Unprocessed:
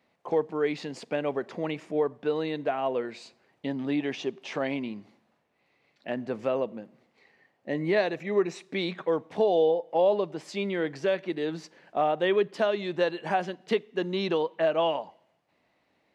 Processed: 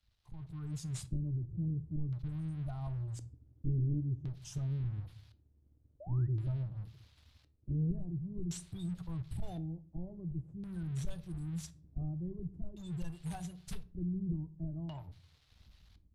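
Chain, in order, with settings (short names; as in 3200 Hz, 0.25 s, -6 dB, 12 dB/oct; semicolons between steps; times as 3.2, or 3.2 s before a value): inverse Chebyshev band-stop 220–4400 Hz, stop band 60 dB; spectral gate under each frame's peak -30 dB strong; sample leveller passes 3; AGC gain up to 13.5 dB; painted sound rise, 6–6.28, 550–2000 Hz -54 dBFS; LFO low-pass square 0.47 Hz 310–4100 Hz; shoebox room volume 380 m³, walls furnished, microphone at 0.46 m; gain +14.5 dB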